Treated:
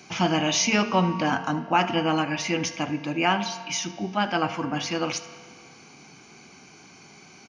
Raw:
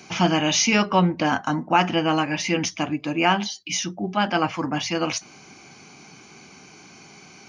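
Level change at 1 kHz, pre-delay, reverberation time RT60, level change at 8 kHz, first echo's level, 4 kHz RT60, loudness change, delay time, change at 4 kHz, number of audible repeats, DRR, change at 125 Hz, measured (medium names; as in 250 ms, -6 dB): -2.5 dB, 4 ms, 1.9 s, -3.0 dB, -19.0 dB, 1.8 s, -2.5 dB, 76 ms, -3.0 dB, 1, 10.0 dB, -3.0 dB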